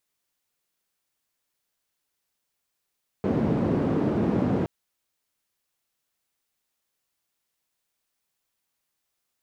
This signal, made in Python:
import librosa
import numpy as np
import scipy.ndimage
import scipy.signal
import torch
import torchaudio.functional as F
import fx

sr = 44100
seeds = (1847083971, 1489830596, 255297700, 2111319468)

y = fx.band_noise(sr, seeds[0], length_s=1.42, low_hz=150.0, high_hz=270.0, level_db=-24.0)